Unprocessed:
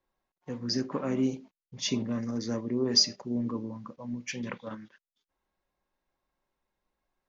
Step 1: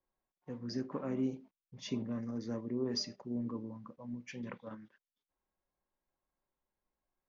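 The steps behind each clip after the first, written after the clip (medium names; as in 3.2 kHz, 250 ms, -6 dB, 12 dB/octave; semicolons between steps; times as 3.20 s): treble shelf 3 kHz -12 dB; trim -6.5 dB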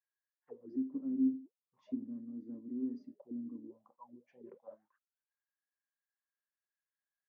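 auto-wah 270–1700 Hz, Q 14, down, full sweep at -36.5 dBFS; trim +7 dB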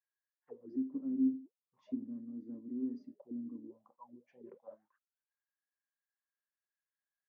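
no audible change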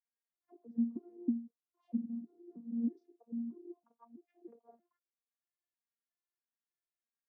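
vocoder on a broken chord bare fifth, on A#3, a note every 319 ms; trim +1.5 dB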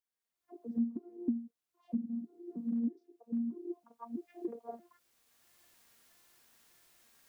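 recorder AGC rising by 15 dB/s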